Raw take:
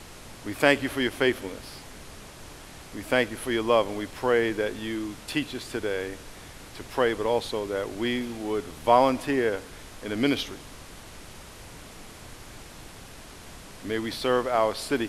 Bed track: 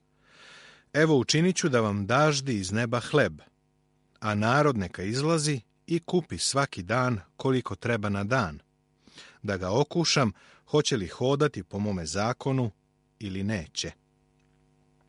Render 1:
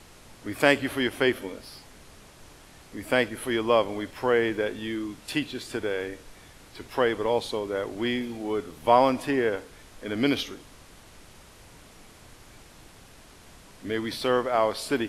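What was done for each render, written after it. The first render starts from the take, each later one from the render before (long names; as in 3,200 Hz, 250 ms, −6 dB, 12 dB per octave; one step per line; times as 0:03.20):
noise reduction from a noise print 6 dB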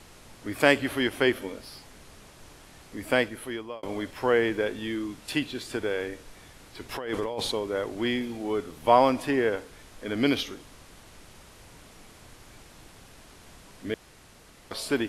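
0:03.13–0:03.83: fade out
0:06.89–0:07.52: compressor whose output falls as the input rises −31 dBFS
0:13.94–0:14.71: fill with room tone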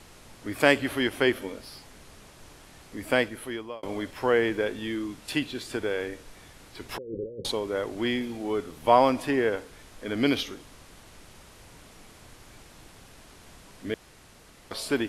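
0:06.98–0:07.45: Chebyshev low-pass with heavy ripple 550 Hz, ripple 6 dB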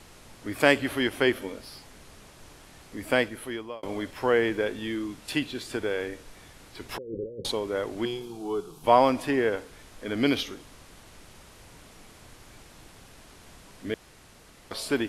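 0:08.05–0:08.84: phaser with its sweep stopped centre 380 Hz, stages 8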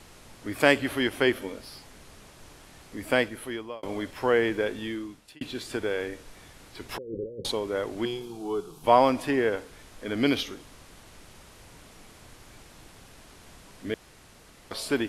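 0:04.80–0:05.41: fade out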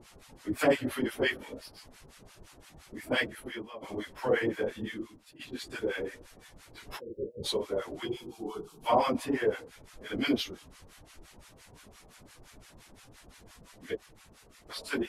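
random phases in long frames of 50 ms
two-band tremolo in antiphase 5.8 Hz, depth 100%, crossover 870 Hz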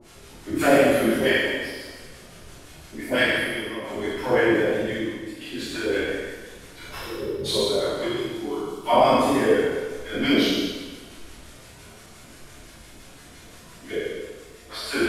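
peak hold with a decay on every bin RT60 1.09 s
coupled-rooms reverb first 0.94 s, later 2.6 s, DRR −4 dB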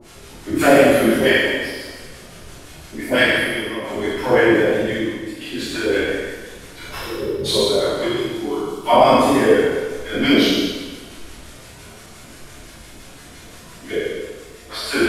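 level +5.5 dB
brickwall limiter −1 dBFS, peak gain reduction 1.5 dB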